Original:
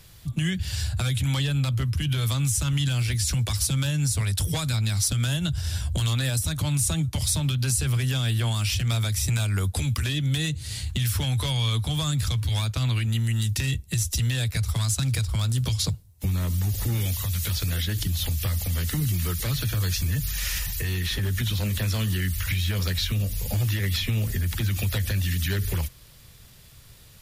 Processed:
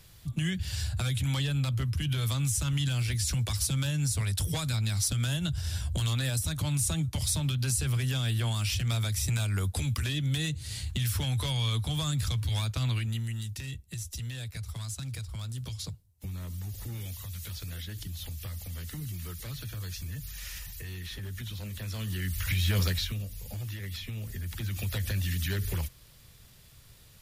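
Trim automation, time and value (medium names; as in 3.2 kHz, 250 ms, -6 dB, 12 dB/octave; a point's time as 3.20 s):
12.91 s -4.5 dB
13.54 s -12.5 dB
21.77 s -12.5 dB
22.79 s +0.5 dB
23.30 s -12.5 dB
24.18 s -12.5 dB
25.09 s -5 dB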